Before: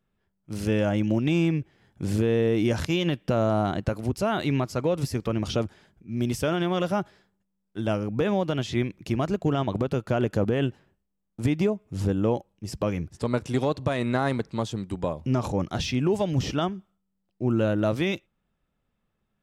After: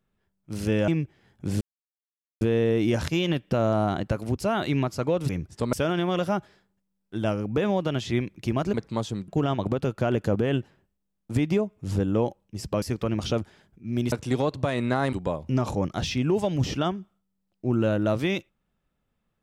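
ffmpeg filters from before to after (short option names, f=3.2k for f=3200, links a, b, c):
-filter_complex "[0:a]asplit=10[a][b][c][d][e][f][g][h][i][j];[a]atrim=end=0.882[k];[b]atrim=start=1.448:end=2.18,asetpts=PTS-STARTPTS,afade=t=out:st=0.728:d=0.004:c=hsin,apad=pad_dur=0.8[l];[c]atrim=start=2.18:end=5.062,asetpts=PTS-STARTPTS,afade=t=in:d=0.004:c=hsin[m];[d]atrim=start=12.908:end=13.352[n];[e]atrim=start=6.358:end=9.372[o];[f]atrim=start=14.358:end=14.902[p];[g]atrim=start=9.368:end=12.912[q];[h]atrim=start=5.058:end=6.362[r];[i]atrim=start=13.348:end=14.362[s];[j]atrim=start=14.898[t];[l][m]concat=n=2:v=0:a=1[u];[k][u]acrossfade=d=0.004:c1=hsin:c2=hsin[v];[v][n]acrossfade=d=0.004:c1=hsin:c2=hsin[w];[w][o]acrossfade=d=0.004:c1=hsin:c2=hsin[x];[x][p]acrossfade=d=0.004:c1=hsin:c2=hsin[y];[y][q]acrossfade=d=0.004:c1=hsin:c2=hsin[z];[z][r]acrossfade=d=0.004:c1=hsin:c2=hsin[aa];[aa][s]acrossfade=d=0.004:c1=hsin:c2=hsin[ab];[ab][t]acrossfade=d=0.004:c1=hsin:c2=hsin"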